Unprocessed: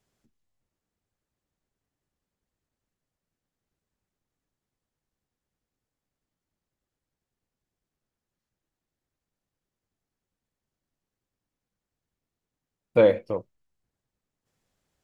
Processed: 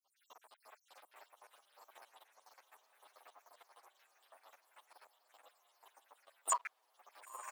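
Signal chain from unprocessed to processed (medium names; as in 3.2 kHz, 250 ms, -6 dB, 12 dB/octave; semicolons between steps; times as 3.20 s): random holes in the spectrogram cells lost 73%; recorder AGC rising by 75 dB/s; in parallel at -6.5 dB: Schmitt trigger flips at -26 dBFS; on the sum: speed mistake 7.5 ips tape played at 15 ips; compression 6:1, threshold -37 dBFS, peak gain reduction 26 dB; waveshaping leveller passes 2; high-pass 740 Hz 24 dB/octave; tilt EQ -2 dB/octave; on a send: echo that smears into a reverb 1011 ms, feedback 63%, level -13 dB; on the sum: endless flanger 8.5 ms -0.48 Hz; trim +4.5 dB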